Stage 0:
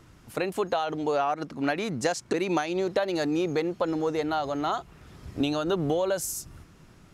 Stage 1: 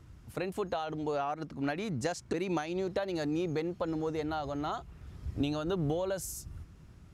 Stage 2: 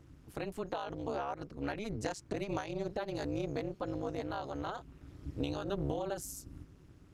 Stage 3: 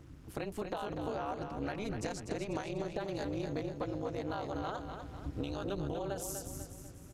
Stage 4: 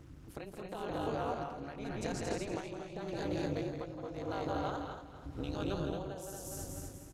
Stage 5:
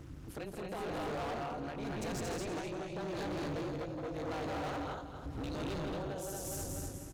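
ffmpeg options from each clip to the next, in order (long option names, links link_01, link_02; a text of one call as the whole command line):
ffmpeg -i in.wav -af "equalizer=frequency=63:width=0.54:gain=14,volume=-8dB" out.wav
ffmpeg -i in.wav -af "tremolo=f=210:d=0.974" out.wav
ffmpeg -i in.wav -af "acompressor=threshold=-39dB:ratio=3,aecho=1:1:246|492|738|984|1230:0.447|0.205|0.0945|0.0435|0.02,volume=4dB" out.wav
ffmpeg -i in.wav -af "aecho=1:1:166.2|224.5:0.562|0.631,tremolo=f=0.88:d=0.63" out.wav
ffmpeg -i in.wav -af "asoftclip=type=hard:threshold=-40dB,volume=4.5dB" out.wav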